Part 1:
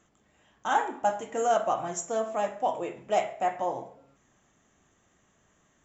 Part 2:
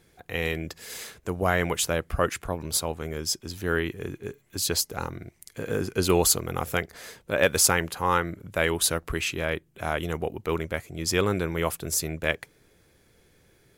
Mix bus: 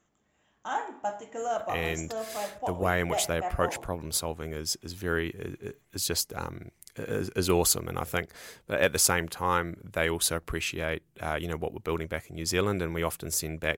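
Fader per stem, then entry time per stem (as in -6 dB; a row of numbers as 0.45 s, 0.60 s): -6.0 dB, -3.0 dB; 0.00 s, 1.40 s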